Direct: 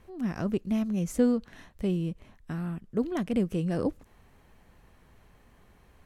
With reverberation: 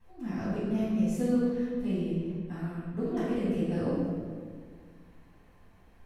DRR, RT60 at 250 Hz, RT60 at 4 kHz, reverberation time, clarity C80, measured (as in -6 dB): -15.0 dB, 2.2 s, 1.2 s, 1.7 s, 0.0 dB